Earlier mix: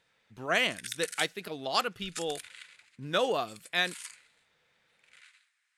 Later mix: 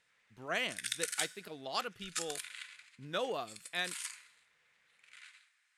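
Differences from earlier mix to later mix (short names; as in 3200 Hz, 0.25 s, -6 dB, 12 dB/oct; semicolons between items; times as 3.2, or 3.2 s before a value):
speech -8.0 dB; background: send +11.0 dB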